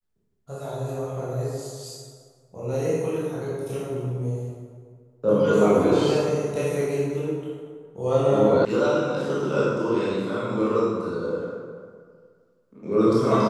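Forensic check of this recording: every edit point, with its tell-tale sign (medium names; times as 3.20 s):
8.65 s: sound stops dead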